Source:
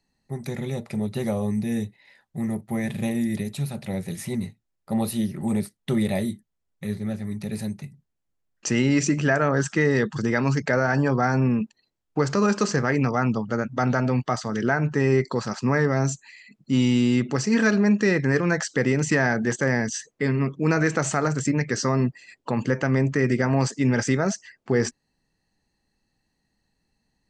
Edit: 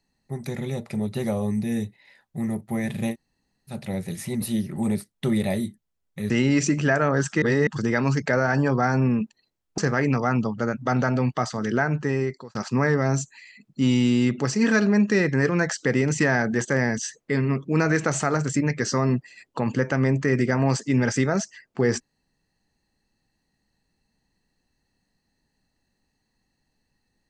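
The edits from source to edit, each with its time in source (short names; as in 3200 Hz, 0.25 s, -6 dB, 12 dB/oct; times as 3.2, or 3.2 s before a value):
3.13–3.7 room tone, crossfade 0.06 s
4.42–5.07 cut
6.95–8.7 cut
9.82–10.07 reverse
12.18–12.69 cut
14.57–15.46 fade out equal-power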